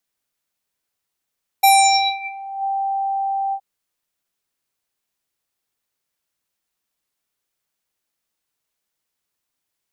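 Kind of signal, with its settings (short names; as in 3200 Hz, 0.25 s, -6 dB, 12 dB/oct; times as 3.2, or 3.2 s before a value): synth note square G5 24 dB/oct, low-pass 850 Hz, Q 7, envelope 4 oct, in 1.00 s, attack 11 ms, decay 0.55 s, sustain -23 dB, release 0.07 s, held 1.90 s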